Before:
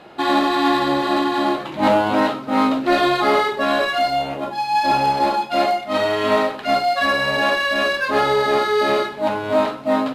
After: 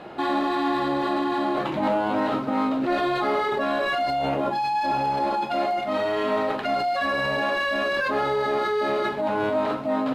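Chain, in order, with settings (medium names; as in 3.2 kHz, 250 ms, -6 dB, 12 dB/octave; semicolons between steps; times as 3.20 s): treble shelf 2.7 kHz -8.5 dB; de-hum 52.68 Hz, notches 2; in parallel at +3 dB: compressor with a negative ratio -27 dBFS, ratio -1; on the sum: trim -8.5 dB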